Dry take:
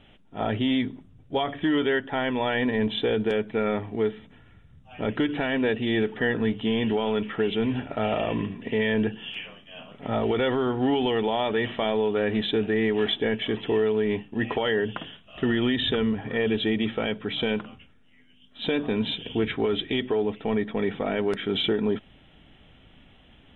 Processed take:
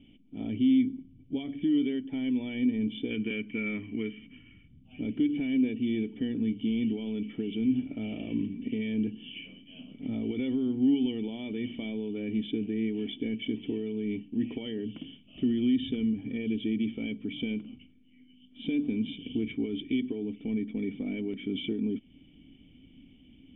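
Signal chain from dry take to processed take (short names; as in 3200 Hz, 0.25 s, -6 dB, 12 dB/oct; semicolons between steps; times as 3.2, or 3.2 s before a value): spectral gain 3.1–4.67, 970–3200 Hz +12 dB; in parallel at +3 dB: compressor, threshold -35 dBFS, peak gain reduction 17 dB; on the sum: vocal tract filter i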